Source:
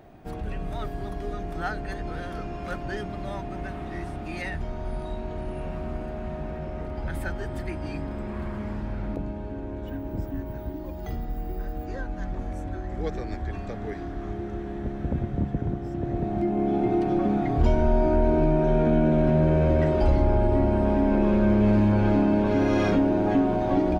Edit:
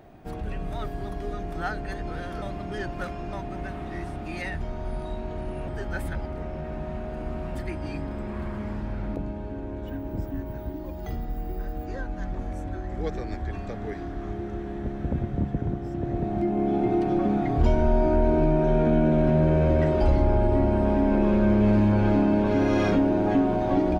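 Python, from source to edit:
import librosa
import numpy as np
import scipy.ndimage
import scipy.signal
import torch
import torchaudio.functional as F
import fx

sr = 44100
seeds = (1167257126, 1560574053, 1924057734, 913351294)

y = fx.edit(x, sr, fx.reverse_span(start_s=2.42, length_s=0.91),
    fx.reverse_span(start_s=5.68, length_s=1.87), tone=tone)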